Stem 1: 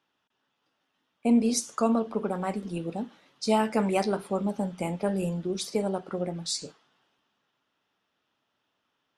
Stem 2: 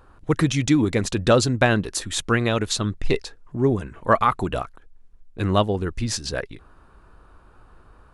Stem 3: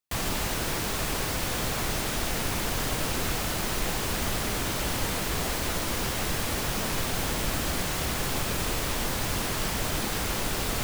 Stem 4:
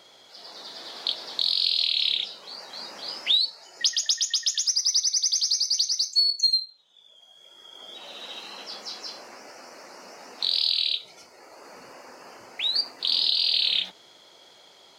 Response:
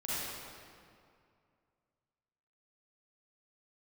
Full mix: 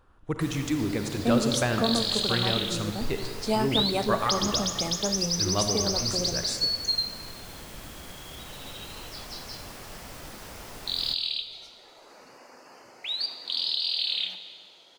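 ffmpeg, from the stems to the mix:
-filter_complex "[0:a]volume=0.75[s0];[1:a]volume=0.282,asplit=2[s1][s2];[s2]volume=0.398[s3];[2:a]adelay=300,volume=0.178,asplit=2[s4][s5];[s5]volume=0.133[s6];[3:a]adelay=450,volume=0.473,asplit=2[s7][s8];[s8]volume=0.251[s9];[4:a]atrim=start_sample=2205[s10];[s3][s6][s9]amix=inputs=3:normalize=0[s11];[s11][s10]afir=irnorm=-1:irlink=0[s12];[s0][s1][s4][s7][s12]amix=inputs=5:normalize=0"

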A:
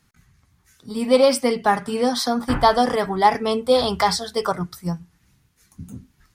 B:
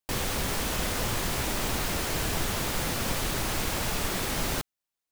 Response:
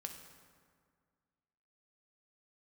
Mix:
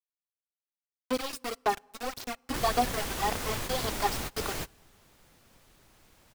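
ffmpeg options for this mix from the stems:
-filter_complex "[0:a]aecho=1:1:2.7:0.77,aeval=exprs='val(0)*gte(abs(val(0)),0.158)':c=same,aphaser=in_gain=1:out_gain=1:delay=3.7:decay=0.57:speed=1.8:type=sinusoidal,volume=0.158,asplit=3[s0][s1][s2];[s1]volume=0.0944[s3];[1:a]adelay=2450,volume=0.531[s4];[s2]apad=whole_len=333599[s5];[s4][s5]sidechaingate=range=0.0501:threshold=0.00316:ratio=16:detection=peak[s6];[2:a]atrim=start_sample=2205[s7];[s3][s7]afir=irnorm=-1:irlink=0[s8];[s0][s6][s8]amix=inputs=3:normalize=0"

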